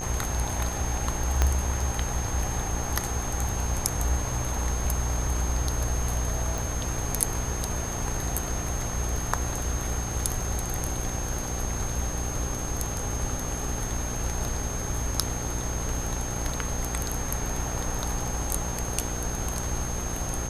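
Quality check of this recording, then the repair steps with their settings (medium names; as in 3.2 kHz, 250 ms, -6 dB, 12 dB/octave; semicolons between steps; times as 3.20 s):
buzz 60 Hz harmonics 31 -33 dBFS
whine 6.4 kHz -35 dBFS
1.42 s: pop -8 dBFS
6.58 s: pop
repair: de-click; band-stop 6.4 kHz, Q 30; de-hum 60 Hz, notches 31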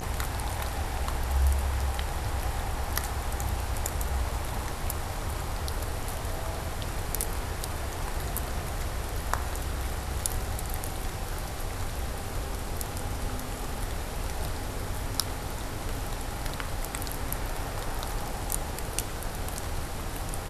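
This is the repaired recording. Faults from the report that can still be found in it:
1.42 s: pop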